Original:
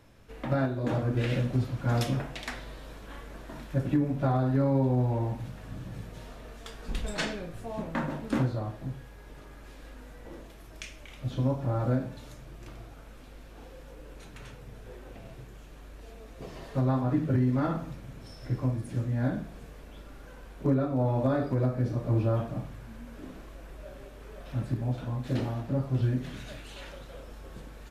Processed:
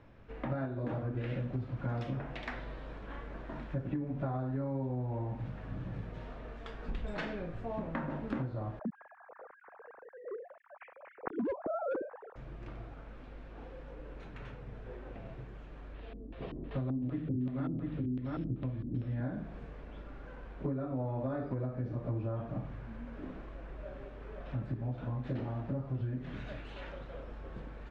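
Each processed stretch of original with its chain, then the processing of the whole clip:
8.79–12.36 sine-wave speech + LPF 1600 Hz 24 dB/oct + overloaded stage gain 21.5 dB
15.94–19.21 LFO low-pass square 2.6 Hz 290–3500 Hz + echo 0.698 s -5 dB + dynamic EQ 900 Hz, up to -5 dB, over -44 dBFS, Q 1.4
whole clip: compressor 5:1, threshold -33 dBFS; LPF 2300 Hz 12 dB/oct

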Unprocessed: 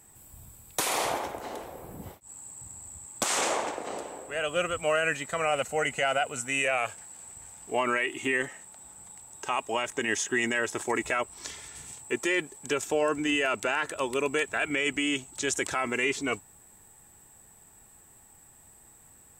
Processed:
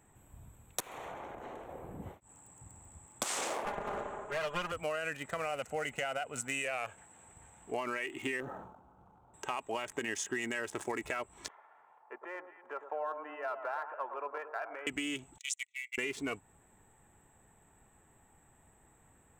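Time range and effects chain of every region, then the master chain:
0.8–1.69 compressor 4:1, threshold -34 dBFS + tube stage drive 34 dB, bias 0.65
3.65–4.72 minimum comb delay 4.9 ms + steep low-pass 7700 Hz 48 dB/oct + bell 950 Hz +6 dB 2.3 oct
8.4–9.34 elliptic low-pass 1400 Hz + short-mantissa float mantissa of 2-bit + sustainer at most 65 dB/s
11.48–14.87 Butterworth band-pass 930 Hz, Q 1.3 + echo with dull and thin repeats by turns 0.107 s, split 1200 Hz, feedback 60%, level -8.5 dB
15.38–15.98 gate -31 dBFS, range -31 dB + brick-wall FIR band-pass 1900–12000 Hz
whole clip: Wiener smoothing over 9 samples; high shelf 7000 Hz +4 dB; compressor, threshold -30 dBFS; gain -2.5 dB

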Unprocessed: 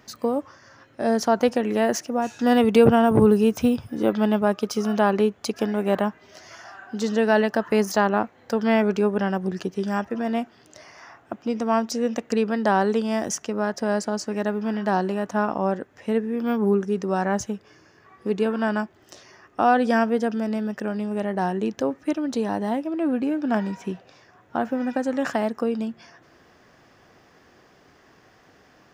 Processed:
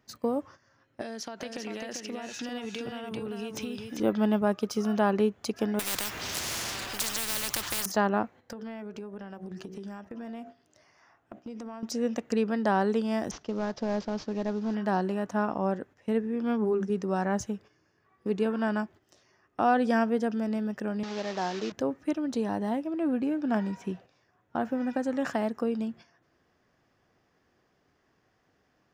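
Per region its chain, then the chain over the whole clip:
1.01–4 weighting filter D + compressor 12:1, threshold -28 dBFS + echo 0.394 s -5 dB
5.79–7.86 G.711 law mismatch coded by mu + high shelf 2900 Hz +9.5 dB + spectral compressor 10:1
8.52–11.83 de-hum 63.06 Hz, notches 12 + compressor 8:1, threshold -32 dBFS
13.31–14.75 CVSD 32 kbps + bell 2000 Hz -4.5 dB 1 oct
16.22–16.9 LPF 8900 Hz + notches 50/100/150/200 Hz
21.03–21.72 delta modulation 32 kbps, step -27.5 dBFS + HPF 170 Hz 6 dB/oct + tone controls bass -7 dB, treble +4 dB
whole clip: gate -42 dBFS, range -10 dB; low shelf 210 Hz +4.5 dB; gain -6 dB

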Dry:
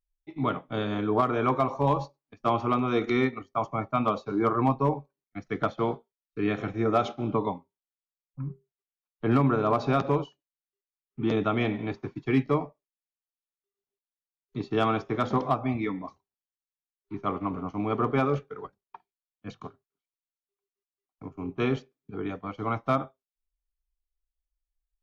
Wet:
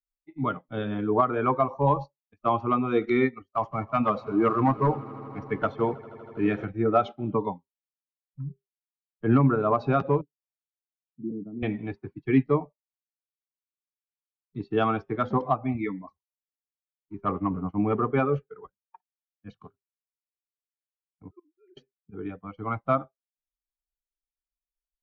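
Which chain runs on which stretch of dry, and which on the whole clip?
3.55–6.65 G.711 law mismatch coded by mu + hard clip -16.5 dBFS + swelling echo 80 ms, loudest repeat 5, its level -18 dB
10.21–11.63 Butterworth band-pass 200 Hz, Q 0.93 + tilt +2 dB/oct
17.24–18 sample leveller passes 1 + air absorption 160 m
21.31–21.77 sine-wave speech + LPF 1900 Hz 24 dB/oct + flipped gate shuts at -34 dBFS, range -25 dB
whole clip: per-bin expansion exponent 1.5; LPF 2500 Hz 12 dB/oct; gain +4.5 dB

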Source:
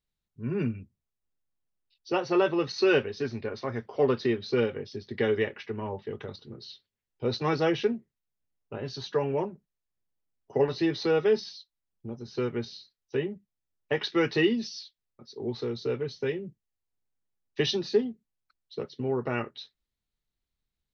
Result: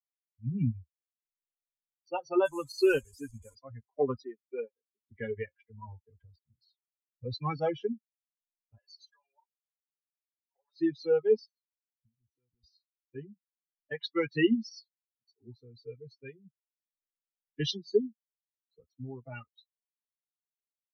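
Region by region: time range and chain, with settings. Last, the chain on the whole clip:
2.45–3.55 delta modulation 64 kbps, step -35.5 dBFS + bell 1000 Hz +5.5 dB 0.28 oct
4.24–5.09 BPF 270–2200 Hz + upward expander, over -46 dBFS
8.78–10.77 HPF 730 Hz + comb 5.4 ms, depth 42% + compressor 12:1, threshold -38 dBFS
11.46–12.64 HPF 63 Hz 24 dB/oct + bell 4900 Hz -14.5 dB 0.51 oct + compressor 20:1, threshold -38 dBFS
whole clip: per-bin expansion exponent 3; low shelf 290 Hz +7.5 dB

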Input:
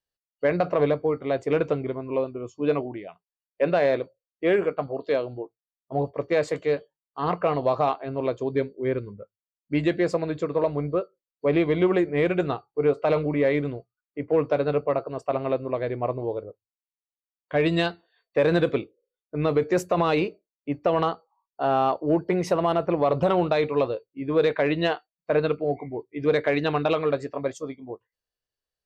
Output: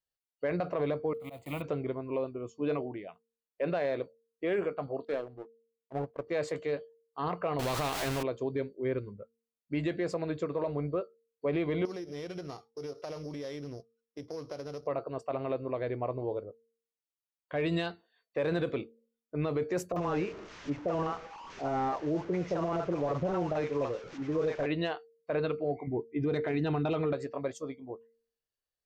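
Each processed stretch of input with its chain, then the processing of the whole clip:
1.13–1.64 block floating point 5-bit + fixed phaser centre 1600 Hz, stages 6 + auto swell 0.147 s
5.05–6.27 high shelf 2500 Hz -10.5 dB + power-law curve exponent 1.4
7.59–8.23 zero-crossing step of -37 dBFS + low shelf 190 Hz +12 dB + spectral compressor 2:1
11.85–14.87 sample sorter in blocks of 8 samples + LPF 5000 Hz + compressor, threshold -32 dBFS
19.92–24.66 delta modulation 32 kbps, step -32.5 dBFS + bell 4400 Hz -11 dB 1.5 oct + bands offset in time lows, highs 40 ms, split 700 Hz
25.87–27.13 low shelf 410 Hz +10 dB + notch comb 560 Hz
whole clip: de-hum 229.4 Hz, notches 2; limiter -18 dBFS; gain -5 dB

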